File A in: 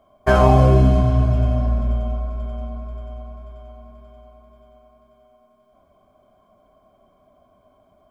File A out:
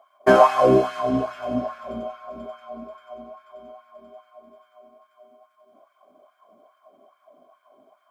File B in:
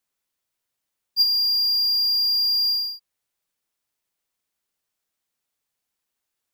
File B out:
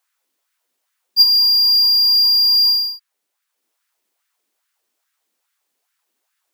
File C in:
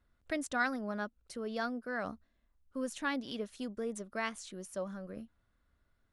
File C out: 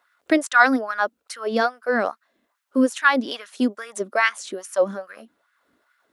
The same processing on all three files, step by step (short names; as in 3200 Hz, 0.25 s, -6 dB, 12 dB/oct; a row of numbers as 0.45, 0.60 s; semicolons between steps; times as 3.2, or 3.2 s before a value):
transient shaper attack +1 dB, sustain -3 dB; LFO high-pass sine 2.4 Hz 260–1600 Hz; normalise peaks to -1.5 dBFS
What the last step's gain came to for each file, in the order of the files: -0.5, +7.5, +13.5 dB